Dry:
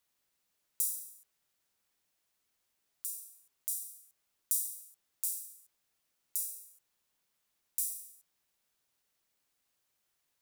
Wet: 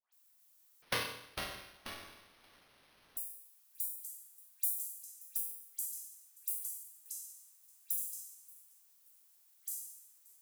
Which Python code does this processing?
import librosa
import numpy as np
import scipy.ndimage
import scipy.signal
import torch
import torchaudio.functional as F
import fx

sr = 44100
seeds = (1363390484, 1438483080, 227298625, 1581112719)

y = scipy.signal.sosfilt(scipy.signal.butter(4, 760.0, 'highpass', fs=sr, output='sos'), x)
y = fx.peak_eq(y, sr, hz=5500.0, db=-15.0, octaves=1.8)
y = fx.dmg_noise_colour(y, sr, seeds[0], colour='violet', level_db=-70.0)
y = fx.dispersion(y, sr, late='highs', ms=126.0, hz=1800.0)
y = fx.echo_pitch(y, sr, ms=277, semitones=-3, count=2, db_per_echo=-6.0)
y = fx.echo_feedback(y, sr, ms=579, feedback_pct=35, wet_db=-22)
y = fx.resample_bad(y, sr, factor=6, down='none', up='hold', at=(0.82, 3.17))
y = F.gain(torch.from_numpy(y), 2.0).numpy()